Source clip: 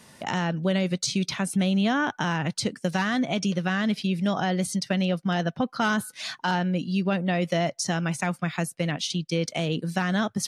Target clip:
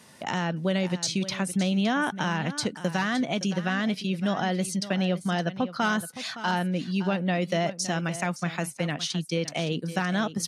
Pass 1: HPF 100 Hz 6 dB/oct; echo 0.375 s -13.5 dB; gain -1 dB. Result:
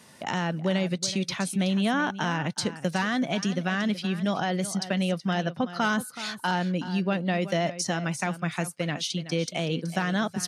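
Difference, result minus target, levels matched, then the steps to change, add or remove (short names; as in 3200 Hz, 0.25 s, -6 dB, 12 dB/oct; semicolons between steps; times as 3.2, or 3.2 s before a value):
echo 0.19 s early
change: echo 0.565 s -13.5 dB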